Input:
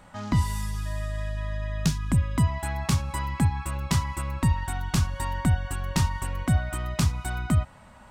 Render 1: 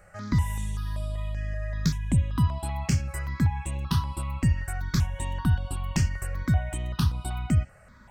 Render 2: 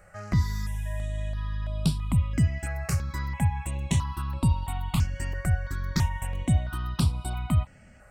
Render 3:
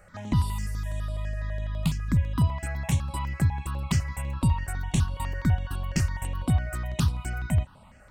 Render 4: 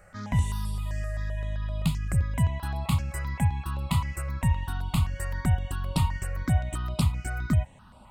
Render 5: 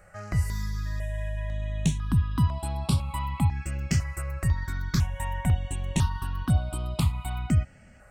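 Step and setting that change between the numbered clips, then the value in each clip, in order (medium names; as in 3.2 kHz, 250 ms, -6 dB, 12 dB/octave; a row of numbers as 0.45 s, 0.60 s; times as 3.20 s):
stepped phaser, rate: 5.2 Hz, 3 Hz, 12 Hz, 7.7 Hz, 2 Hz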